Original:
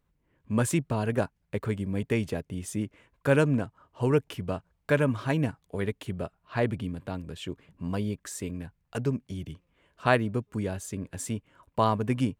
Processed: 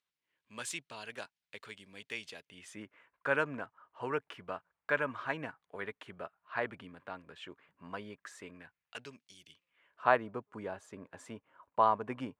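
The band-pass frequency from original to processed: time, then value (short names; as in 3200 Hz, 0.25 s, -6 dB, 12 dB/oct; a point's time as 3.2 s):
band-pass, Q 1.2
2.38 s 3800 Hz
2.83 s 1400 Hz
8.53 s 1400 Hz
9.39 s 5700 Hz
10.07 s 1000 Hz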